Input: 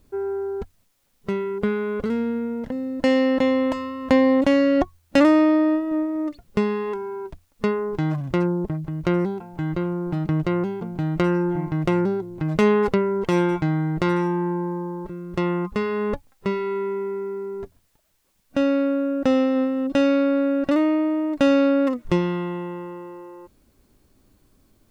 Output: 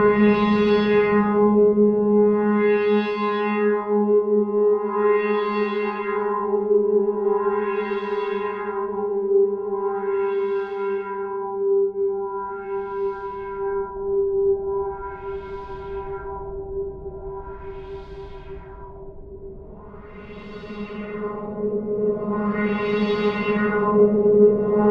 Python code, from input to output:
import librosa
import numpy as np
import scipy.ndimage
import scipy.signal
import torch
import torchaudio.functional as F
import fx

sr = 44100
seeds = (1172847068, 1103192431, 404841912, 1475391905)

y = fx.paulstretch(x, sr, seeds[0], factor=25.0, window_s=0.5, from_s=6.65)
y = fx.echo_wet_highpass(y, sr, ms=345, feedback_pct=79, hz=2000.0, wet_db=-6)
y = fx.filter_lfo_lowpass(y, sr, shape='sine', hz=0.4, low_hz=470.0, high_hz=4100.0, q=1.9)
y = y * 10.0 ** (4.0 / 20.0)